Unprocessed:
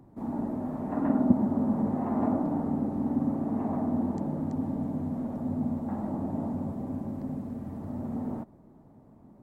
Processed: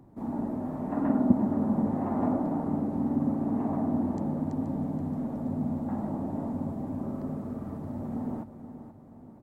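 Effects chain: 6.99–7.77 s: graphic EQ with 31 bands 400 Hz +6 dB, 630 Hz +3 dB, 1.25 kHz +10 dB; on a send: feedback delay 477 ms, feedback 47%, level -11.5 dB

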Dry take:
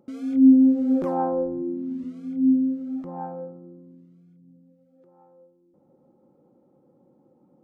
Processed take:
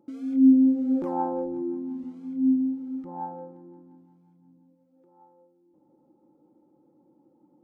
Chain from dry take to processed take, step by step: feedback echo behind a high-pass 175 ms, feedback 68%, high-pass 1.4 kHz, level -12 dB; spectral replace 2.46–3.02 s, 340–1200 Hz before; small resonant body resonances 310/870 Hz, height 13 dB, ringing for 70 ms; trim -7 dB

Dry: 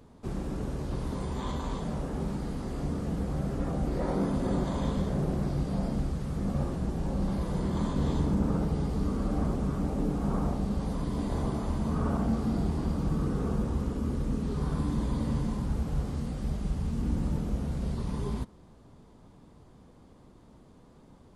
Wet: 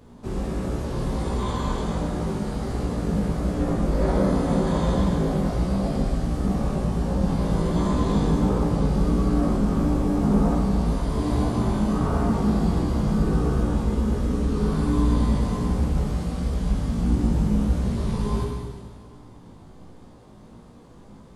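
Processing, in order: Schroeder reverb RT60 1.8 s, combs from 30 ms, DRR -1 dB; chorus 1.4 Hz, delay 16.5 ms, depth 2.4 ms; trim +7.5 dB

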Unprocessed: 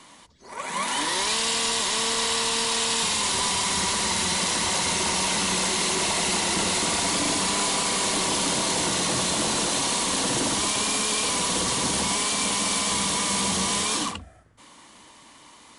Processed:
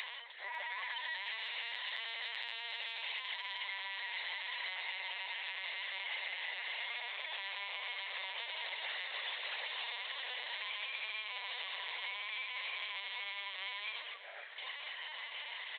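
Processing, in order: harmonic-percussive separation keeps harmonic; peaking EQ 1 kHz +2.5 dB 0.65 oct; LPC vocoder at 8 kHz pitch kept; steep high-pass 520 Hz 36 dB/octave; 1.05–3.63 s: transient shaper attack -7 dB, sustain +3 dB; resonant high shelf 1.5 kHz +7 dB, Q 3; compression 6:1, threshold -54 dBFS, peak gain reduction 30.5 dB; delay 549 ms -14 dB; trim +12 dB

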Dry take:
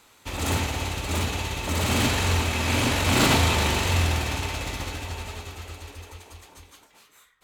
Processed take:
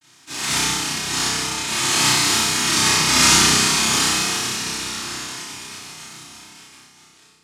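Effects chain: noise-vocoded speech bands 1; bass shelf 200 Hz +3 dB; vibrato 0.53 Hz 45 cents; peaking EQ 570 Hz -13.5 dB 0.48 oct; on a send: flutter echo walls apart 5.4 m, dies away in 0.81 s; on the sum: simulated room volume 1000 m³, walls furnished, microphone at 2.7 m; attacks held to a fixed rise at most 310 dB/s

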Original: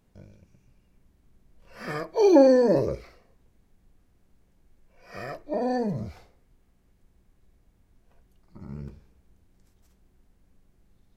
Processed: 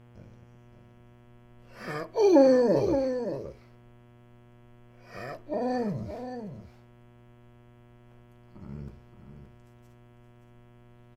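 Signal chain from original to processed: mains buzz 120 Hz, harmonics 28, -52 dBFS -7 dB/octave; delay 572 ms -9 dB; trim -2.5 dB

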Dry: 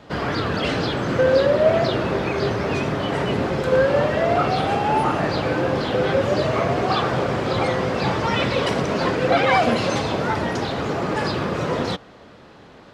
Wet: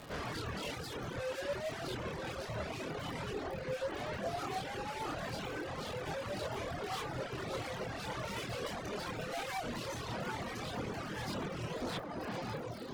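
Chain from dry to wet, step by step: 3.44–4.26 s: distance through air 370 m; echo that smears into a reverb 1033 ms, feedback 57%, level -11 dB; crackle 130 per s -28 dBFS; valve stage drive 32 dB, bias 0.35; 0.73–1.15 s: treble shelf 7.6 kHz +6.5 dB; peak limiter -34 dBFS, peak gain reduction 8 dB; chorus voices 4, 0.91 Hz, delay 25 ms, depth 1.4 ms; reverb removal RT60 1.2 s; trim +1.5 dB

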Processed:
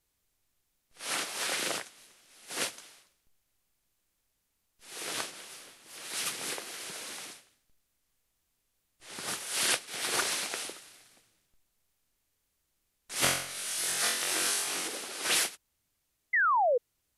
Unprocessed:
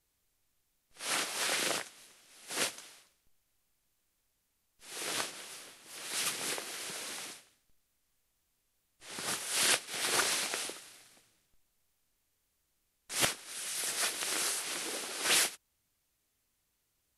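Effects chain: 13.20–14.88 s: flutter echo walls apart 3.8 m, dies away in 0.63 s; 16.33–16.78 s: painted sound fall 460–2100 Hz -25 dBFS

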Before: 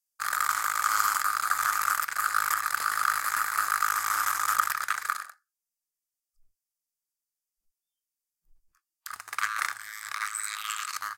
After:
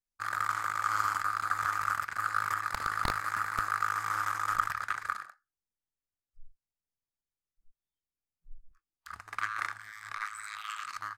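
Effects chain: 2.73–3.71 s: integer overflow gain 12.5 dB; RIAA curve playback; trim -3 dB

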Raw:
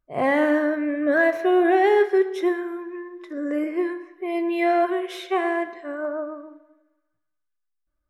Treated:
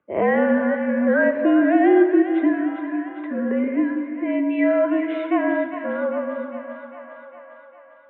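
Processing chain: peaking EQ 450 Hz +5.5 dB 0.61 oct; two-band feedback delay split 700 Hz, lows 163 ms, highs 402 ms, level -10 dB; mistuned SSB -54 Hz 180–2800 Hz; three bands compressed up and down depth 40%

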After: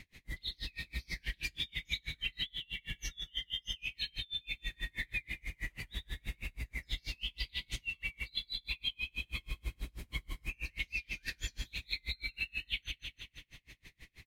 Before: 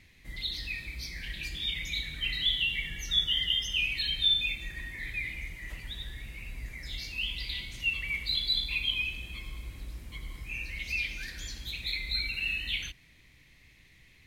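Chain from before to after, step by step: feedback delay 170 ms, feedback 56%, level -13.5 dB; compression 6:1, threshold -38 dBFS, peak gain reduction 15.5 dB; logarithmic tremolo 6.2 Hz, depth 36 dB; trim +7.5 dB

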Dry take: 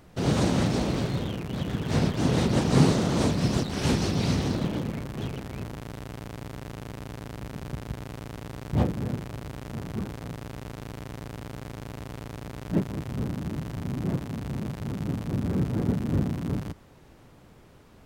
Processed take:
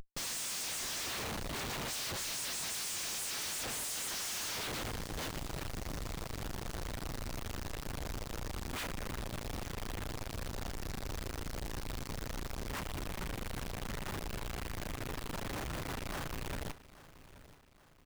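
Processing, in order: spectral gate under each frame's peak -30 dB weak; RIAA curve recording; Schmitt trigger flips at -43 dBFS; on a send: feedback delay 829 ms, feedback 45%, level -17.5 dB; on the sum: trim +1 dB

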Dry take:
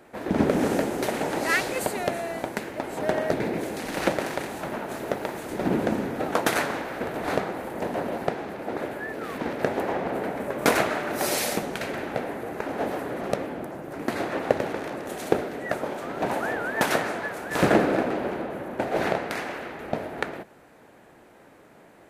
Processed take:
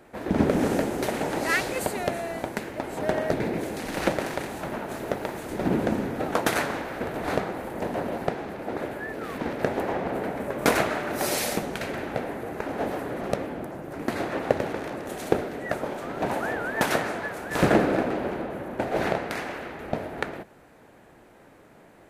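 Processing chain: bass shelf 100 Hz +8 dB; trim -1 dB

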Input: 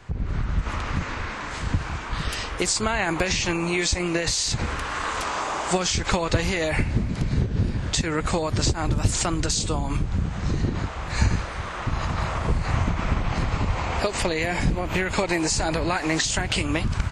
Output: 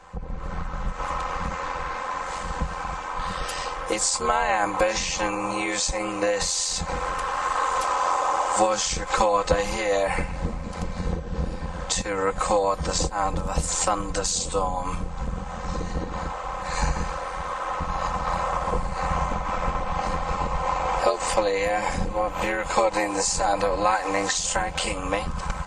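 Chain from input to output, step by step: graphic EQ 125/250/500/1000/8000 Hz +4/-10/+10/+11/+7 dB; granular stretch 1.5×, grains 23 ms; trim -4.5 dB

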